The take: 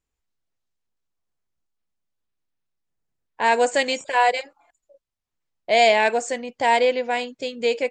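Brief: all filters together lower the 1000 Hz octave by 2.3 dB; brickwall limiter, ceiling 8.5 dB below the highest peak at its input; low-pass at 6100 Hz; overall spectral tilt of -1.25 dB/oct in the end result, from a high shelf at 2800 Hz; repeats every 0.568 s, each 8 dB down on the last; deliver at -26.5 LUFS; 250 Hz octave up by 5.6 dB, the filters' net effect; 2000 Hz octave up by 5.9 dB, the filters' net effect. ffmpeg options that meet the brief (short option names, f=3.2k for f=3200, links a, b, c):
-af "lowpass=6.1k,equalizer=f=250:t=o:g=6,equalizer=f=1k:t=o:g=-5.5,equalizer=f=2k:t=o:g=5,highshelf=f=2.8k:g=8,alimiter=limit=-10.5dB:level=0:latency=1,aecho=1:1:568|1136|1704|2272|2840:0.398|0.159|0.0637|0.0255|0.0102,volume=-4.5dB"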